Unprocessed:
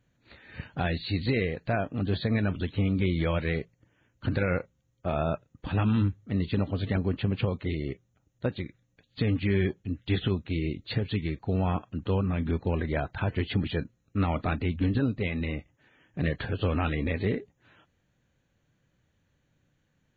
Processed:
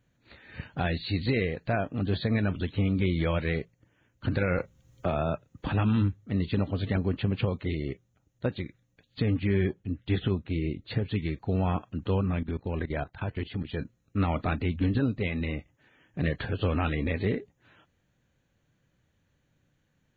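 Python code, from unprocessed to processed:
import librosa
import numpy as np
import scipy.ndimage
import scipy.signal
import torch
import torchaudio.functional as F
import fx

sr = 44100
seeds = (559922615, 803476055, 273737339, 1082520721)

y = fx.band_squash(x, sr, depth_pct=70, at=(4.58, 5.73))
y = fx.high_shelf(y, sr, hz=3400.0, db=-8.5, at=(9.2, 11.16))
y = fx.level_steps(y, sr, step_db=15, at=(12.39, 13.8))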